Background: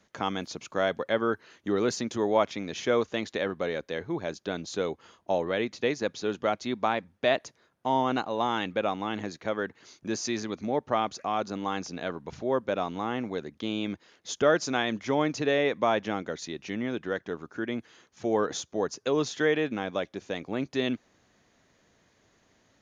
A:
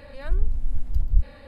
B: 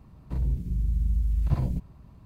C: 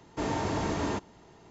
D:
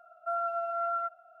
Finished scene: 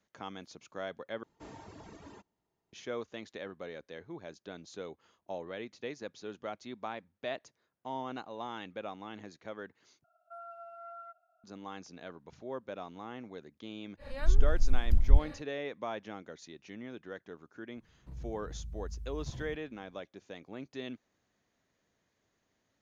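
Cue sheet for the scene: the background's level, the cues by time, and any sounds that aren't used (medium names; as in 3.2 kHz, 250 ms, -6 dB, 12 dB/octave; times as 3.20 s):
background -13 dB
1.23 s: replace with C -17.5 dB + reverb removal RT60 1.8 s
10.04 s: replace with D -13 dB + peaking EQ 1 kHz -13.5 dB 0.47 oct
13.97 s: add A -1.5 dB, fades 0.10 s
17.76 s: add B -17 dB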